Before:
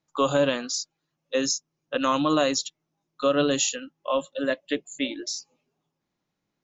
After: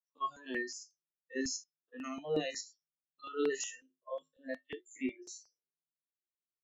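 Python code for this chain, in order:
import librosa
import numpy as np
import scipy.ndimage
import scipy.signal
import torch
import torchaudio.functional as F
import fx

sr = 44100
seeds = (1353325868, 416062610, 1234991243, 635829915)

y = fx.spec_steps(x, sr, hold_ms=50)
y = fx.comb_fb(y, sr, f0_hz=52.0, decay_s=0.24, harmonics='odd', damping=0.0, mix_pct=80)
y = fx.small_body(y, sr, hz=(390.0, 1800.0), ring_ms=30, db=15)
y = fx.noise_reduce_blind(y, sr, reduce_db=26)
y = fx.phaser_held(y, sr, hz=5.5, low_hz=390.0, high_hz=5000.0)
y = y * librosa.db_to_amplitude(-2.5)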